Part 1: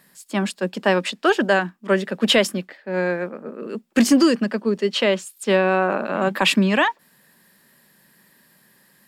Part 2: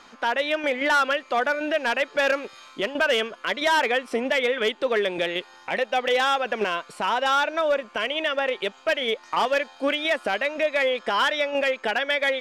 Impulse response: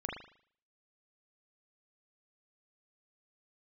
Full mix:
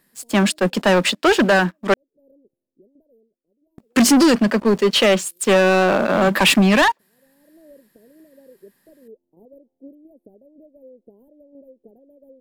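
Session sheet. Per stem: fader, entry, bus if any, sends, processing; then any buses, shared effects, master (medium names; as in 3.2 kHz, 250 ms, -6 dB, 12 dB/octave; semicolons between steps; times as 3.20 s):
-2.5 dB, 0.00 s, muted 1.94–3.78 s, no send, treble shelf 10 kHz +3.5 dB; waveshaping leveller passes 3
-12.0 dB, 0.00 s, no send, inverse Chebyshev band-stop 1.2–6.4 kHz, stop band 60 dB; auto duck -20 dB, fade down 1.30 s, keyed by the first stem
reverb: none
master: none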